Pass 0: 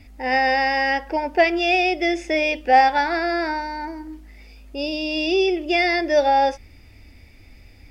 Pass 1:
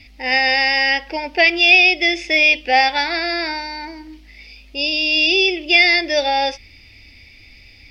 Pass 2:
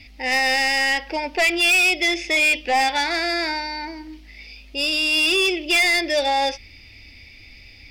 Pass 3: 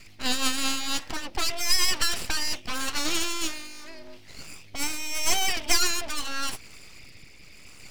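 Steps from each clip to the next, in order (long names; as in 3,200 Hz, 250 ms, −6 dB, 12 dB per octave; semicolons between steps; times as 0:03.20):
flat-topped bell 3,400 Hz +13.5 dB; level −2 dB
soft clipping −14 dBFS, distortion −10 dB
rotating-speaker cabinet horn 6.3 Hz, later 0.85 Hz, at 0:00.24; harmonic and percussive parts rebalanced harmonic −9 dB; full-wave rectification; level +5.5 dB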